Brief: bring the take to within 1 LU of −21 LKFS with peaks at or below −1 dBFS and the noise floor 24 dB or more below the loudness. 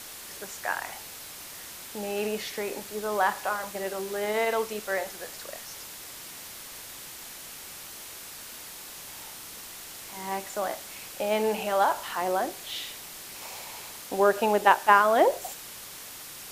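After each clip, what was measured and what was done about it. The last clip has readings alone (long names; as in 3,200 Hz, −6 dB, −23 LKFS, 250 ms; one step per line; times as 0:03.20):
background noise floor −43 dBFS; target noise floor −53 dBFS; integrated loudness −28.5 LKFS; sample peak −4.5 dBFS; target loudness −21.0 LKFS
→ noise reduction from a noise print 10 dB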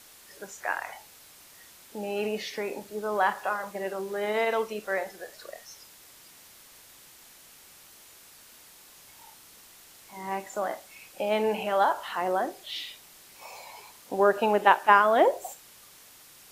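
background noise floor −53 dBFS; integrated loudness −27.0 LKFS; sample peak −4.5 dBFS; target loudness −21.0 LKFS
→ level +6 dB
brickwall limiter −1 dBFS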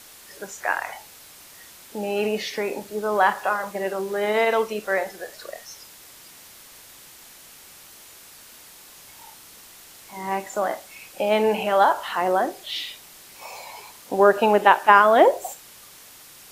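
integrated loudness −21.5 LKFS; sample peak −1.0 dBFS; background noise floor −47 dBFS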